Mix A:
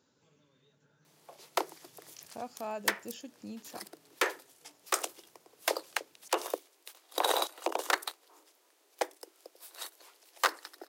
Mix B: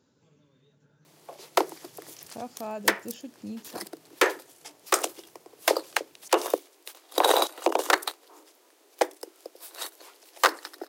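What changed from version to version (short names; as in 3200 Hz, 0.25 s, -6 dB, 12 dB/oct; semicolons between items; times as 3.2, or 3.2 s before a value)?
background +6.0 dB; master: add low shelf 430 Hz +8 dB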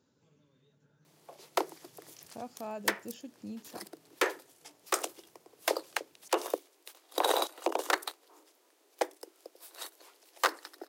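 speech -4.5 dB; background -7.0 dB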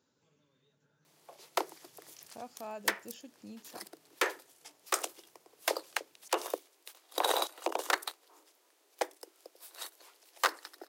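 master: add low shelf 430 Hz -8 dB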